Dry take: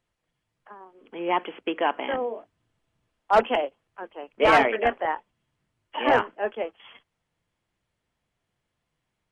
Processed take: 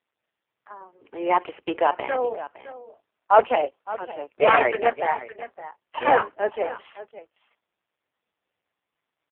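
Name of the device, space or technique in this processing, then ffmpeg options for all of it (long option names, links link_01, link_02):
satellite phone: -af "highpass=340,lowpass=3300,aecho=1:1:562:0.168,volume=5dB" -ar 8000 -c:a libopencore_amrnb -b:a 5150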